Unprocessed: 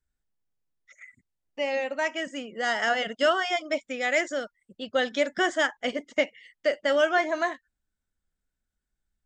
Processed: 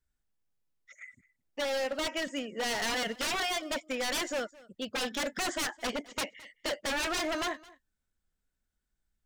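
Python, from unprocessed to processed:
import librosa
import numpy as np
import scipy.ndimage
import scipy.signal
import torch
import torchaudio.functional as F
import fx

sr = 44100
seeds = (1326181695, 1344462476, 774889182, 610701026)

y = 10.0 ** (-26.5 / 20.0) * (np.abs((x / 10.0 ** (-26.5 / 20.0) + 3.0) % 4.0 - 2.0) - 1.0)
y = y + 10.0 ** (-22.0 / 20.0) * np.pad(y, (int(215 * sr / 1000.0), 0))[:len(y)]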